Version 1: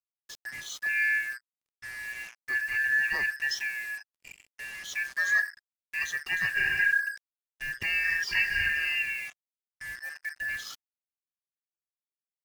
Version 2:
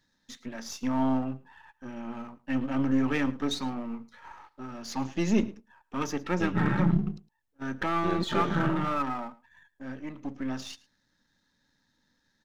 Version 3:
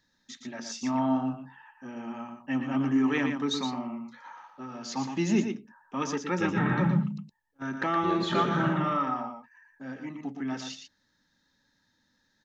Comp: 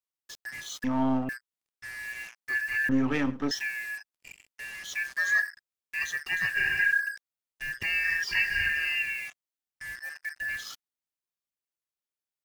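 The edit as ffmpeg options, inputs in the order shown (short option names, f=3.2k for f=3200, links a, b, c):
-filter_complex "[1:a]asplit=2[a][b];[0:a]asplit=3[c][d][e];[c]atrim=end=0.842[f];[a]atrim=start=0.838:end=1.292[g];[d]atrim=start=1.288:end=2.892[h];[b]atrim=start=2.888:end=3.512[i];[e]atrim=start=3.508[j];[f][g]acrossfade=d=0.004:c1=hsin:c2=hsin[k];[k][h]acrossfade=d=0.004:c1=hsin:c2=hsin[l];[l][i]acrossfade=d=0.004:c1=hsin:c2=hsin[m];[m][j]acrossfade=d=0.004:c1=hsin:c2=hsin"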